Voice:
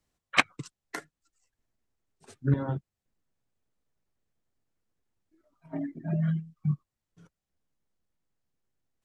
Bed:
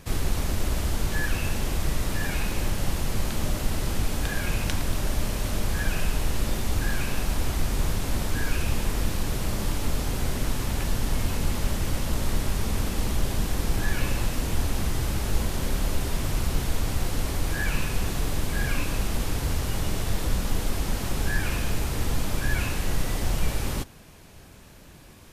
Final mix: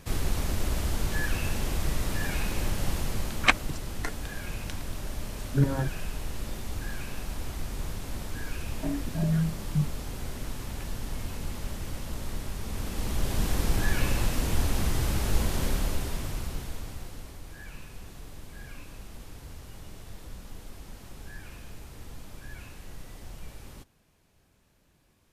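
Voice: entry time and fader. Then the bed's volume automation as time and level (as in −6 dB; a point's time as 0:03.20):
3.10 s, +1.5 dB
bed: 0:02.96 −2.5 dB
0:03.81 −9 dB
0:12.61 −9 dB
0:13.47 −0.5 dB
0:15.64 −0.5 dB
0:17.43 −17.5 dB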